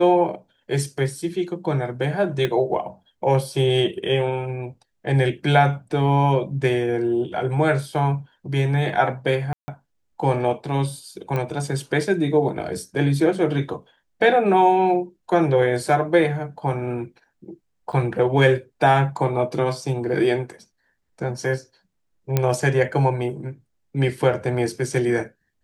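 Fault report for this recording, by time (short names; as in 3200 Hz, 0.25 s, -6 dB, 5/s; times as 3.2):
2.45 pop -11 dBFS
9.53–9.68 gap 0.15 s
11.36 pop -14 dBFS
17.92–17.93 gap 7.6 ms
22.37 pop -6 dBFS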